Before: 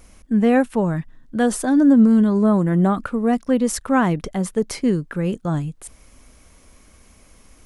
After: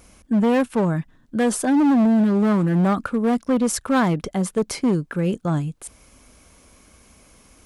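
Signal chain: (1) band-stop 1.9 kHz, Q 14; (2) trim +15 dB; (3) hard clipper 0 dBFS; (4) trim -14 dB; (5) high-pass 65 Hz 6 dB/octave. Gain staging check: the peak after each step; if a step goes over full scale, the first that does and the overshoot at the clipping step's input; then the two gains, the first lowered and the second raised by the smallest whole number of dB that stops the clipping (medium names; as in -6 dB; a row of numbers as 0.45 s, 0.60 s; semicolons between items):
-6.0 dBFS, +9.0 dBFS, 0.0 dBFS, -14.0 dBFS, -11.5 dBFS; step 2, 9.0 dB; step 2 +6 dB, step 4 -5 dB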